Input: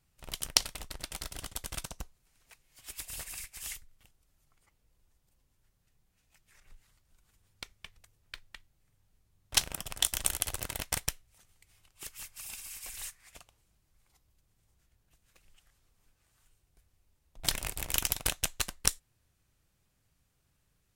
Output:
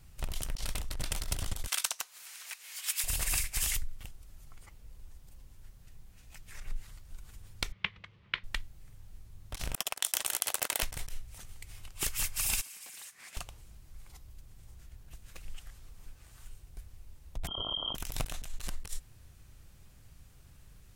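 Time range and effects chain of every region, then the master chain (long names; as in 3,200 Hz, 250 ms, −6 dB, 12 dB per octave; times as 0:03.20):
0:01.67–0:03.04: high-pass filter 1,300 Hz + upward compression, threshold −47 dBFS
0:07.72–0:08.44: loudspeaker in its box 130–3,800 Hz, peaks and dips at 190 Hz +7 dB, 270 Hz −5 dB, 720 Hz −6 dB, 1,100 Hz +5 dB, 2,100 Hz +6 dB, 3,100 Hz +4 dB + highs frequency-modulated by the lows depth 0.17 ms
0:09.75–0:10.83: high-pass filter 490 Hz + noise gate −45 dBFS, range −20 dB + downward compressor 3 to 1, threshold −40 dBFS
0:12.61–0:13.37: high-pass filter 180 Hz 24 dB per octave + downward compressor 5 to 1, threshold −58 dBFS + highs frequency-modulated by the lows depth 0.43 ms
0:17.47–0:17.95: linear-phase brick-wall band-stop 260–1,800 Hz + voice inversion scrambler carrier 3,200 Hz + envelope flattener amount 70%
whole clip: low-shelf EQ 100 Hz +11 dB; compressor whose output falls as the input rises −41 dBFS, ratio −1; level +7 dB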